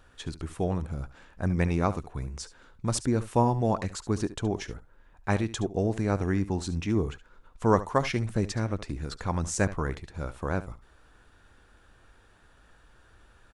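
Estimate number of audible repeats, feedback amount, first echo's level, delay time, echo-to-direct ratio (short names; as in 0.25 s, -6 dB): 1, no steady repeat, -15.5 dB, 71 ms, -15.5 dB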